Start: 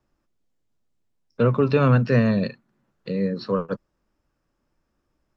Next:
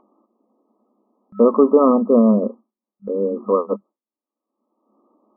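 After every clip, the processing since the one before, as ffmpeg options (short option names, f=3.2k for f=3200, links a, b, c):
-af "agate=range=-33dB:threshold=-40dB:ratio=3:detection=peak,afftfilt=real='re*between(b*sr/4096,200,1300)':imag='im*between(b*sr/4096,200,1300)':win_size=4096:overlap=0.75,acompressor=mode=upward:threshold=-36dB:ratio=2.5,volume=7.5dB"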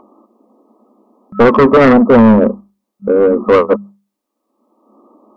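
-af "aeval=exprs='0.891*sin(PI/2*2.51*val(0)/0.891)':c=same,acontrast=20,bandreject=f=50:t=h:w=6,bandreject=f=100:t=h:w=6,bandreject=f=150:t=h:w=6,bandreject=f=200:t=h:w=6,volume=-3dB"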